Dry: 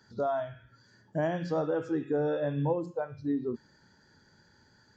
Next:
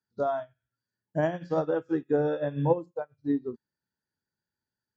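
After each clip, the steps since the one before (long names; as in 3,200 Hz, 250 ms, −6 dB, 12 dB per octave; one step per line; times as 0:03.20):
expander for the loud parts 2.5 to 1, over −49 dBFS
level +7 dB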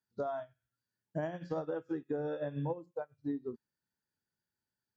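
downward compressor 5 to 1, threshold −31 dBFS, peak gain reduction 12.5 dB
level −2.5 dB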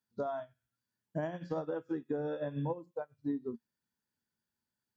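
hollow resonant body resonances 230/1,000/3,400 Hz, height 7 dB, ringing for 65 ms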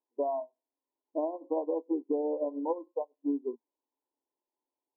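linear-phase brick-wall band-pass 260–1,100 Hz
level +5.5 dB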